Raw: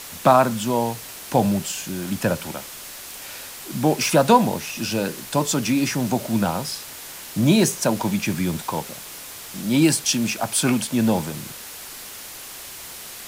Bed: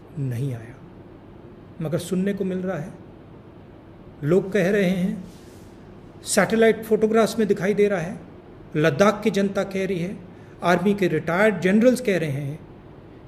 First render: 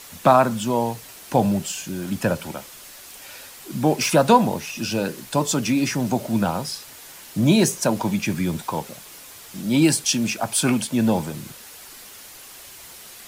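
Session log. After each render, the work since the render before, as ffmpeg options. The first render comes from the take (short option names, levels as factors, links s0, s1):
-af "afftdn=nr=6:nf=-38"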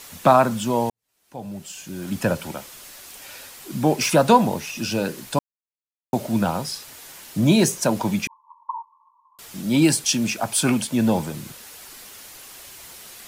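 -filter_complex "[0:a]asettb=1/sr,asplit=3[s0][s1][s2];[s0]atrim=end=8.274[s3];[s1]atrim=start=8.27:end=9.39,asetpts=PTS-STARTPTS,afade=t=in:d=0.004:c=qsin,afade=t=out:st=1.116:d=0.004:c=qsin,asuperpass=centerf=1000:order=20:qfactor=3.8[s4];[s2]atrim=start=9.386[s5];[s3][s4]acrossfade=d=0.004:c1=hsin:c2=qsin[s6];[s6][s5]acrossfade=d=0.004:c1=qsin:c2=hsin,asplit=4[s7][s8][s9][s10];[s7]atrim=end=0.9,asetpts=PTS-STARTPTS,afade=t=out:st=0.896:d=0.004:c=hsin[s11];[s8]atrim=start=0.9:end=5.39,asetpts=PTS-STARTPTS,afade=t=in:d=1.29:c=qua,afade=t=out:st=4.486:d=0.004:c=hsin[s12];[s9]atrim=start=5.39:end=6.13,asetpts=PTS-STARTPTS,volume=0[s13];[s10]atrim=start=6.13,asetpts=PTS-STARTPTS,afade=t=in:d=0.004:c=hsin[s14];[s11][s12][s13][s14]concat=n=4:v=0:a=1"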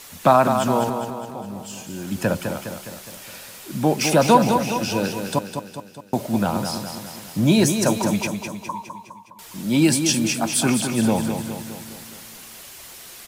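-af "aecho=1:1:206|412|618|824|1030|1236|1442:0.447|0.246|0.135|0.0743|0.0409|0.0225|0.0124"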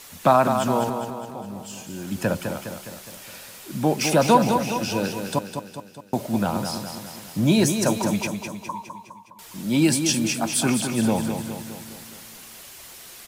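-af "volume=0.794"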